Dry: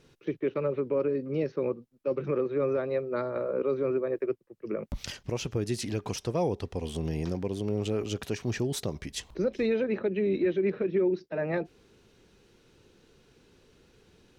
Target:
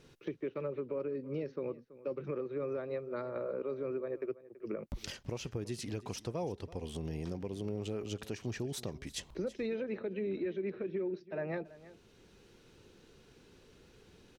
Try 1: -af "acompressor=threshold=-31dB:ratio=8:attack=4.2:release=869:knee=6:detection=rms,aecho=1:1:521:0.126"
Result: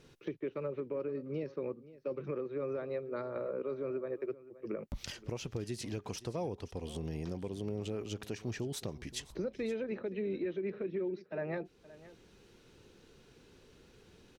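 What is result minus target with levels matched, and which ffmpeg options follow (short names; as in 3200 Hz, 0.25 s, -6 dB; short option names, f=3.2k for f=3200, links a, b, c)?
echo 0.191 s late
-af "acompressor=threshold=-31dB:ratio=8:attack=4.2:release=869:knee=6:detection=rms,aecho=1:1:330:0.126"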